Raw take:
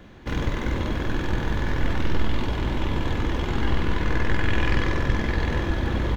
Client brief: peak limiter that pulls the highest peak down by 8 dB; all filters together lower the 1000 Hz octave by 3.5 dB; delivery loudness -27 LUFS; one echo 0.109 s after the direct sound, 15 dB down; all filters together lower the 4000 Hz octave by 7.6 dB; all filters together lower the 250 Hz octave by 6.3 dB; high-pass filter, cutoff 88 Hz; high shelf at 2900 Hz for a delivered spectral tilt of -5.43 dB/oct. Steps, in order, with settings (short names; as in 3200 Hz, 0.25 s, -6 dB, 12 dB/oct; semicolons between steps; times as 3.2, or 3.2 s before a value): HPF 88 Hz; bell 250 Hz -8.5 dB; bell 1000 Hz -3 dB; high shelf 2900 Hz -3 dB; bell 4000 Hz -8 dB; limiter -23 dBFS; echo 0.109 s -15 dB; gain +6.5 dB